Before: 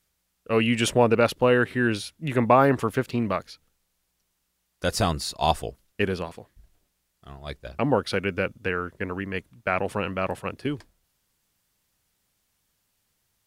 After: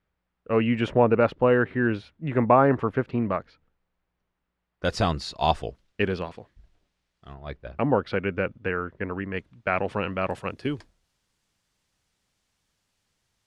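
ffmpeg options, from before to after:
-af "asetnsamples=n=441:p=0,asendcmd='4.85 lowpass f 4400;7.34 lowpass f 2300;9.37 lowpass f 4000;10.29 lowpass f 7300',lowpass=1.8k"

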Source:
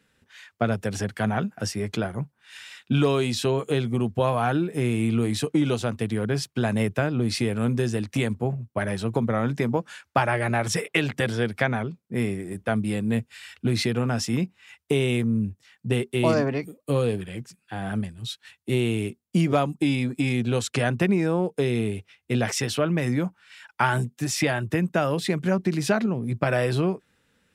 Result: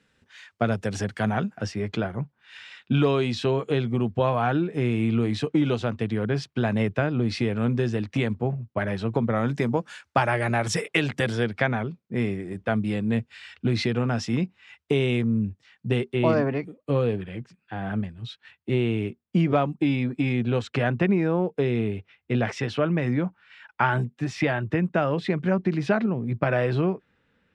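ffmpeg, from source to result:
-af "asetnsamples=n=441:p=0,asendcmd='1.58 lowpass f 3900;9.36 lowpass f 8400;11.45 lowpass f 4500;16.13 lowpass f 2800',lowpass=7.5k"

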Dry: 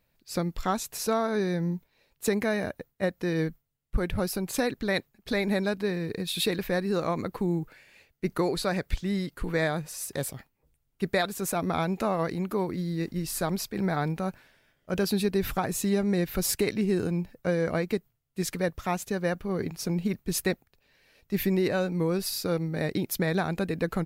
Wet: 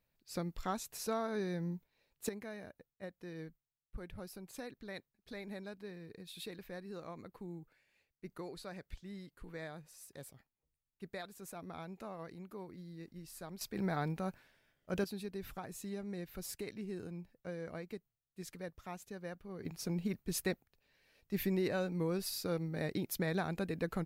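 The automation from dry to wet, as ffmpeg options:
-af "asetnsamples=n=441:p=0,asendcmd='2.29 volume volume -19dB;13.61 volume volume -8dB;15.04 volume volume -17dB;19.65 volume volume -8.5dB',volume=-10dB"

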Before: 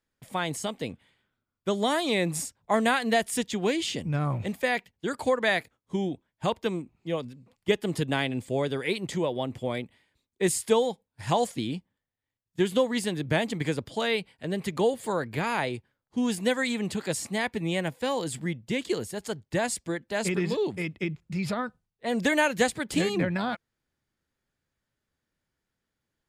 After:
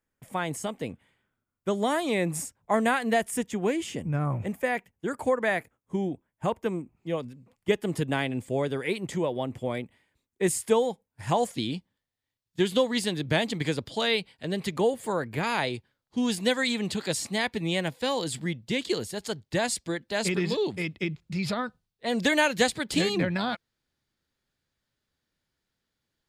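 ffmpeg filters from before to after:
-af "asetnsamples=n=441:p=0,asendcmd='3.31 equalizer g -14;6.97 equalizer g -5.5;11.54 equalizer g 6;14.77 equalizer g -3.5;15.43 equalizer g 6.5',equalizer=f=4.1k:t=o:w=0.92:g=-8"

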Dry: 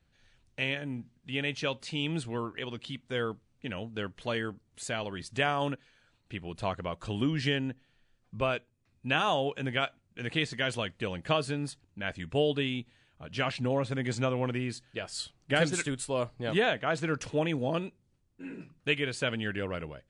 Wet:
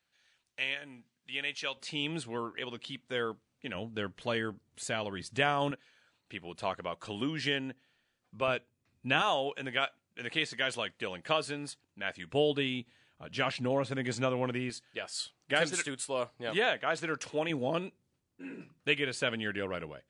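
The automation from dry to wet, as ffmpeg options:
-af "asetnsamples=n=441:p=0,asendcmd='1.77 highpass f 310;3.75 highpass f 98;5.71 highpass f 390;8.48 highpass f 120;9.22 highpass f 480;12.3 highpass f 190;14.7 highpass f 500;17.5 highpass f 220',highpass=f=1.3k:p=1"

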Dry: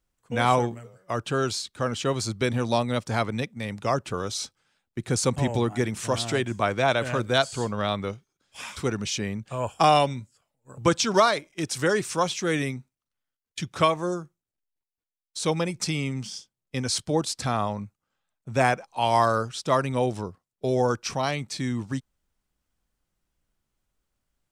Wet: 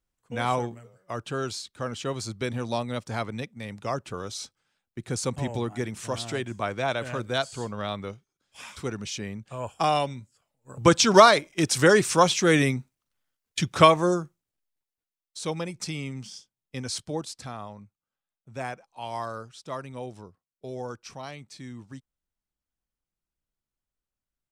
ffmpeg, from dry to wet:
-af "volume=5.5dB,afade=t=in:st=10.2:d=1:silence=0.298538,afade=t=out:st=13.96:d=1.44:silence=0.281838,afade=t=out:st=16.98:d=0.58:silence=0.446684"

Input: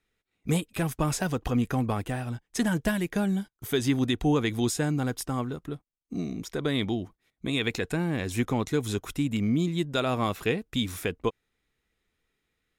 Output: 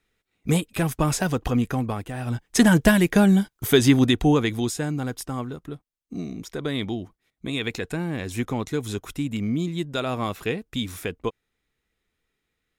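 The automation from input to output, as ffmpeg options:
-af "volume=17dB,afade=t=out:st=1.41:d=0.72:silence=0.446684,afade=t=in:st=2.13:d=0.32:silence=0.237137,afade=t=out:st=3.68:d=1.01:silence=0.316228"

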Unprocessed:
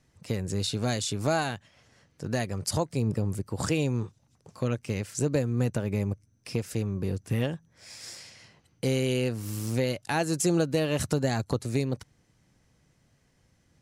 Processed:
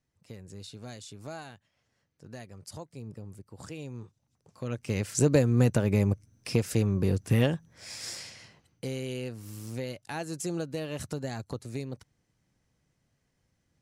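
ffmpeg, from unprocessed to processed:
-af "volume=4dB,afade=t=in:st=3.71:d=0.94:silence=0.421697,afade=t=in:st=4.65:d=0.5:silence=0.266073,afade=t=out:st=8.22:d=0.66:silence=0.237137"

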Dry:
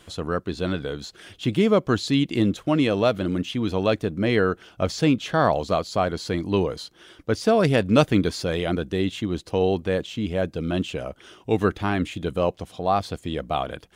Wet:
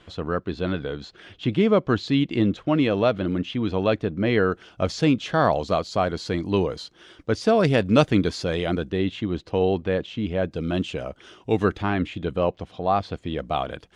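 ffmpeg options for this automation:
-af "asetnsamples=n=441:p=0,asendcmd='4.52 lowpass f 7000;8.9 lowpass f 3700;10.51 lowpass f 6900;11.82 lowpass f 3700;13.39 lowpass f 6800',lowpass=3.7k"

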